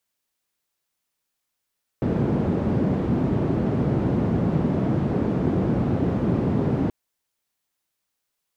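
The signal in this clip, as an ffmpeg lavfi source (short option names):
-f lavfi -i "anoisesrc=c=white:d=4.88:r=44100:seed=1,highpass=f=110,lowpass=f=230,volume=4.7dB"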